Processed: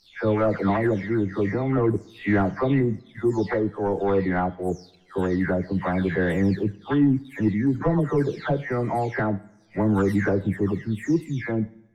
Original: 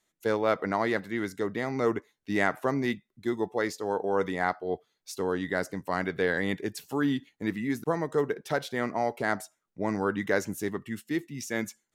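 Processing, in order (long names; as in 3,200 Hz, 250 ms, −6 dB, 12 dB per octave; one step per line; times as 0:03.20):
every frequency bin delayed by itself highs early, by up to 452 ms
leveller curve on the samples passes 1
RIAA equalisation playback
coupled-rooms reverb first 0.68 s, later 2 s, from −18 dB, DRR 16.5 dB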